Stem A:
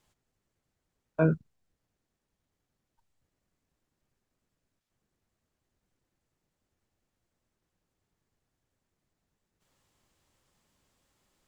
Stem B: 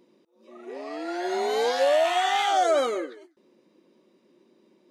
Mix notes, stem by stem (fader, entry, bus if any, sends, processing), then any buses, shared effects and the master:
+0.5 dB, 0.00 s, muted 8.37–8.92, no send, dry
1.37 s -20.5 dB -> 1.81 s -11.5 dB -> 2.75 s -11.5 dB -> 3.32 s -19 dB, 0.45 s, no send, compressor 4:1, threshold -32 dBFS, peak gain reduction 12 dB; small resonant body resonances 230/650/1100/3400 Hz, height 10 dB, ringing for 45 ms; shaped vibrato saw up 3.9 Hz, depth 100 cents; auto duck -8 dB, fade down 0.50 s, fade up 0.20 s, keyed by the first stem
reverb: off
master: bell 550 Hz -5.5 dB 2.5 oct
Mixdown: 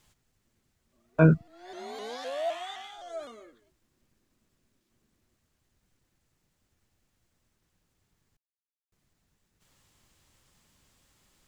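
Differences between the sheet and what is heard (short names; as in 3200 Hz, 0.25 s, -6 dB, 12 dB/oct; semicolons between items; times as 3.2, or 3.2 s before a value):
stem A +0.5 dB -> +8.5 dB; stem B: missing compressor 4:1, threshold -32 dBFS, peak gain reduction 12 dB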